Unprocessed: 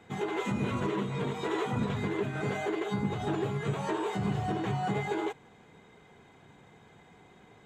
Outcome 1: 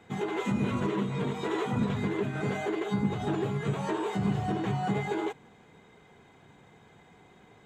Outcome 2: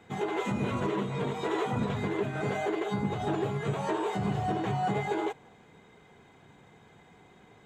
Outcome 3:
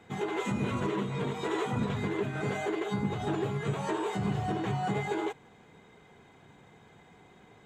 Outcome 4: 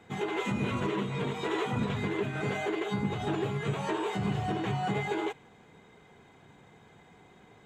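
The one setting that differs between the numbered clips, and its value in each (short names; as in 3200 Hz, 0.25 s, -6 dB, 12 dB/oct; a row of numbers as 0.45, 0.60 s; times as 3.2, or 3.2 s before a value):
dynamic EQ, frequency: 210, 660, 8300, 2700 Hz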